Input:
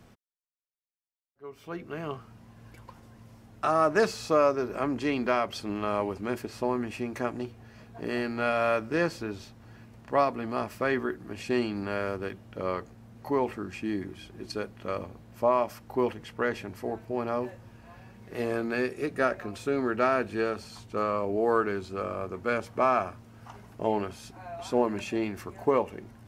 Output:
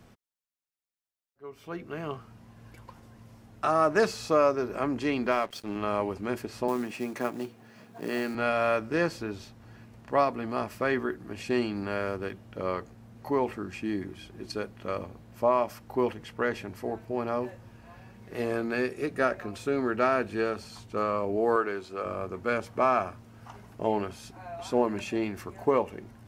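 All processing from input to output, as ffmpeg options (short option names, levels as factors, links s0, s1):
-filter_complex "[0:a]asettb=1/sr,asplit=3[s0][s1][s2];[s0]atrim=end=5.314[s3];[s1]atrim=start=5.31:end=5.76,asetpts=PTS-STARTPTS,afade=t=in:d=0.004:c=qsin,afade=t=out:st=0.446:d=0.004:c=qsin,highpass=130,aeval=exprs='sgn(val(0))*max(abs(val(0))-0.00562,0)':c=same[s4];[s2]atrim=start=5.756[s5];[s3][s4]acrossfade=d=0.004:c1=hsin:c2=qsin[s6];[s6][s5]acrossfade=d=0.004:c1=qsin:c2=hsin,asettb=1/sr,asplit=3[s7][s8][s9];[s7]atrim=end=6.684[s10];[s8]atrim=start=6.68:end=8.35,asetpts=PTS-STARTPTS,afade=t=in:d=0.004:c=qsin,afade=t=out:st=1.666:d=0.004:c=qsin,highpass=f=140:w=0.5412,highpass=f=140:w=1.3066,acrusher=bits=5:mode=log:mix=0:aa=0.000001[s11];[s9]atrim=start=8.346[s12];[s10][s11]acrossfade=d=0.004:c1=hsin:c2=qsin[s13];[s13][s12]acrossfade=d=0.004:c1=qsin:c2=hsin,asettb=1/sr,asplit=3[s14][s15][s16];[s14]atrim=end=21.564[s17];[s15]atrim=start=21.56:end=22.06,asetpts=PTS-STARTPTS,afade=t=in:d=0.004:c=qsin,afade=t=out:st=0.496:d=0.004:c=qsin,highpass=60,bass=f=250:g=-11,treble=f=4000:g=-2[s18];[s16]atrim=start=22.056[s19];[s17][s18]acrossfade=d=0.004:c1=hsin:c2=qsin[s20];[s20][s19]acrossfade=d=0.004:c1=qsin:c2=hsin"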